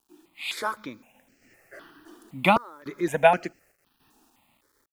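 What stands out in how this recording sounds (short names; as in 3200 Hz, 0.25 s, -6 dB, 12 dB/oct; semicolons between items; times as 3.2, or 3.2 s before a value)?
random-step tremolo, depth 95%; a quantiser's noise floor 12-bit, dither none; notches that jump at a steady rate 3.9 Hz 560–3600 Hz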